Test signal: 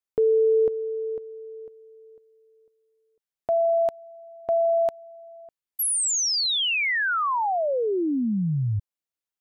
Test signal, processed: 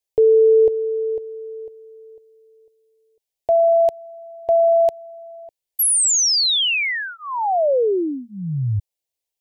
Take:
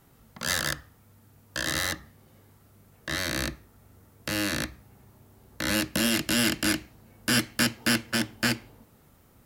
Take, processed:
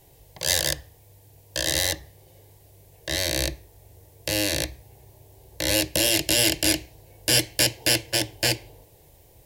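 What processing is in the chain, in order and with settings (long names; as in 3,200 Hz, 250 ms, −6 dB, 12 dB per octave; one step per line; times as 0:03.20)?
phaser with its sweep stopped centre 540 Hz, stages 4
level +7.5 dB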